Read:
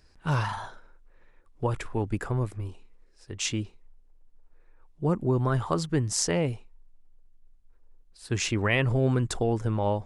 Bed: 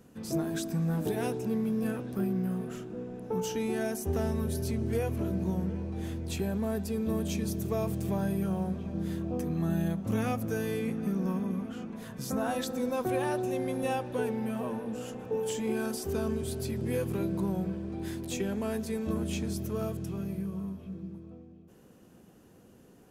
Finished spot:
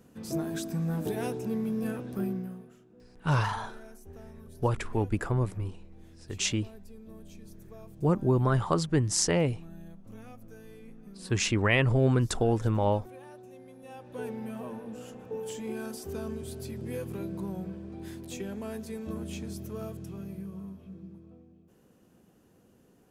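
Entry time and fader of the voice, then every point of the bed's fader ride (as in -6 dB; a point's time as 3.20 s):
3.00 s, +0.5 dB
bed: 2.29 s -1 dB
2.77 s -18 dB
13.84 s -18 dB
14.25 s -5 dB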